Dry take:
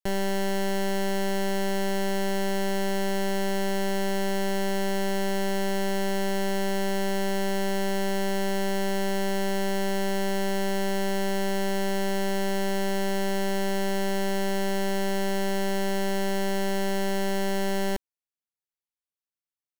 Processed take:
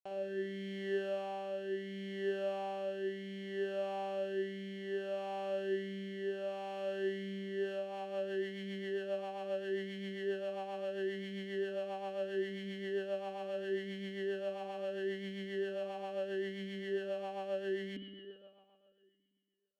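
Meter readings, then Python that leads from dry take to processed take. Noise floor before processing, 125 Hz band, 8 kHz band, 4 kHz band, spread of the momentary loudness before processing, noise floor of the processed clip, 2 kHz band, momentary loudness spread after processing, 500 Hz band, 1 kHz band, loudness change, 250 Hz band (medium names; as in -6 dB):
under -85 dBFS, no reading, under -25 dB, -15.0 dB, 0 LU, -69 dBFS, -13.0 dB, 4 LU, -8.5 dB, -14.0 dB, -11.5 dB, -14.5 dB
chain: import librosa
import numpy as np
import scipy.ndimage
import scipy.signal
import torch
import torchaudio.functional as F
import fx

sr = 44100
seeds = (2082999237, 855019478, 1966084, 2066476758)

y = fx.rev_spring(x, sr, rt60_s=2.3, pass_ms=(56,), chirp_ms=70, drr_db=3.0)
y = fx.rotary_switch(y, sr, hz=0.7, then_hz=7.5, switch_at_s=7.4)
y = fx.vowel_sweep(y, sr, vowels='a-i', hz=0.75)
y = F.gain(torch.from_numpy(y), 1.0).numpy()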